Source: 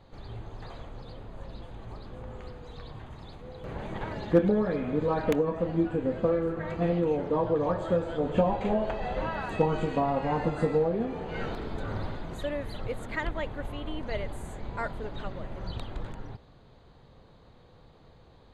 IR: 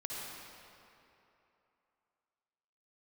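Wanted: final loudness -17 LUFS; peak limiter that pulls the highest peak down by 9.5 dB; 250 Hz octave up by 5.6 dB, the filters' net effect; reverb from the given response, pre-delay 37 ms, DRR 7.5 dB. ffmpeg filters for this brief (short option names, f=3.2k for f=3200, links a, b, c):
-filter_complex "[0:a]equalizer=f=250:t=o:g=8,alimiter=limit=-16dB:level=0:latency=1,asplit=2[a][b];[1:a]atrim=start_sample=2205,adelay=37[c];[b][c]afir=irnorm=-1:irlink=0,volume=-9dB[d];[a][d]amix=inputs=2:normalize=0,volume=11dB"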